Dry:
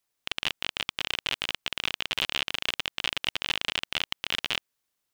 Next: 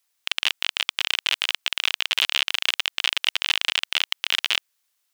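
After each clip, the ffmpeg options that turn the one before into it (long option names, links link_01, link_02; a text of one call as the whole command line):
ffmpeg -i in.wav -af "highpass=frequency=1500:poles=1,volume=8dB" out.wav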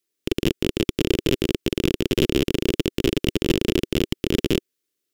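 ffmpeg -i in.wav -af "aeval=exprs='0.891*(cos(1*acos(clip(val(0)/0.891,-1,1)))-cos(1*PI/2))+0.141*(cos(8*acos(clip(val(0)/0.891,-1,1)))-cos(8*PI/2))':channel_layout=same,lowshelf=frequency=550:width_type=q:width=3:gain=13.5,volume=-7dB" out.wav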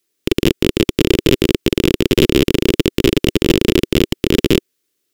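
ffmpeg -i in.wav -af "apsyclip=10dB,volume=-1.5dB" out.wav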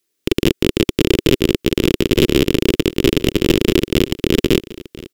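ffmpeg -i in.wav -af "aecho=1:1:1022:0.119,volume=-1dB" out.wav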